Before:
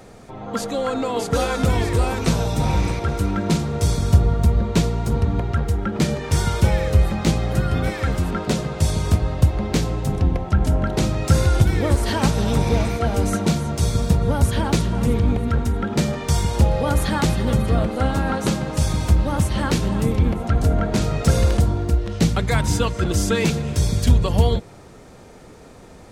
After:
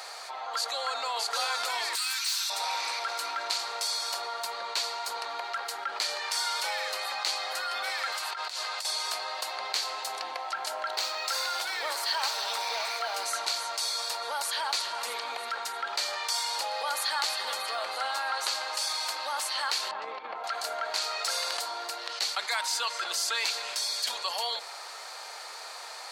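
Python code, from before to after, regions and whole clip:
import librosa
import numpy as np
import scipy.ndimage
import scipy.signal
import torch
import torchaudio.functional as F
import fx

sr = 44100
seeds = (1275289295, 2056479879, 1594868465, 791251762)

y = fx.chain(x, sr, fx.highpass(hz=1400.0, slope=24),
    fx.high_shelf(hz=3900.0, db=11.0),
    fx.clip_hard(threshold_db=-26.5), at=(1.95, 2.5))
y = fx.chain(y, sr, fx.highpass(hz=770.0, slope=6),
    fx.over_compress(threshold_db=-33.0, ratio=-0.5), at=(8.12, 8.85))
y = fx.chain(y, sr, fx.highpass(hz=190.0, slope=12),
    fx.resample_linear(factor=2), at=(10.92, 13.25))
y = fx.chain(y, sr, fx.over_compress(threshold_db=-18.0, ratio=-0.5),
    fx.spacing_loss(db_at_10k=42), at=(19.91, 20.44))
y = scipy.signal.sosfilt(scipy.signal.butter(4, 800.0, 'highpass', fs=sr, output='sos'), y)
y = fx.peak_eq(y, sr, hz=4400.0, db=12.5, octaves=0.3)
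y = fx.env_flatten(y, sr, amount_pct=50)
y = y * 10.0 ** (-6.5 / 20.0)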